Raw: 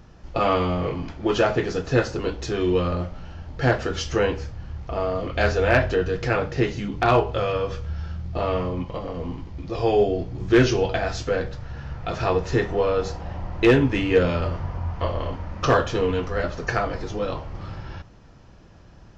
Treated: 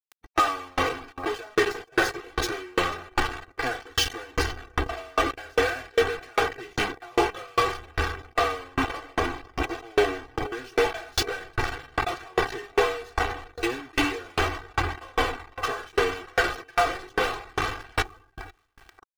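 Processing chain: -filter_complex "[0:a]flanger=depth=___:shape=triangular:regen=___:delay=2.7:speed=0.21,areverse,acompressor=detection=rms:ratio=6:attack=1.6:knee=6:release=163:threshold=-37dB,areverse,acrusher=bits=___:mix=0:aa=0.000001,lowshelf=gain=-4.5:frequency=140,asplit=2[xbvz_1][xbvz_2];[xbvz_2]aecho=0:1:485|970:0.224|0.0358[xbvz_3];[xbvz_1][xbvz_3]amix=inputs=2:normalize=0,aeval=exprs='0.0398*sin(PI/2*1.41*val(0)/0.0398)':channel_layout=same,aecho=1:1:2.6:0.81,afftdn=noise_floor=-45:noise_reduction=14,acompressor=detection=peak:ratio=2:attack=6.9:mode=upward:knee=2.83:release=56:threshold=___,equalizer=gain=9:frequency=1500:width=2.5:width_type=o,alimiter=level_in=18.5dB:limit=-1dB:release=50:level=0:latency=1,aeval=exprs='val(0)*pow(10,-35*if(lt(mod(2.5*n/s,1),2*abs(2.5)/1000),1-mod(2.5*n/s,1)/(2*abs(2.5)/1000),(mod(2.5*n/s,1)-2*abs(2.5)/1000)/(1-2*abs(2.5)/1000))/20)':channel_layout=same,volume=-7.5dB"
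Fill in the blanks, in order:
3.2, 36, 6, -46dB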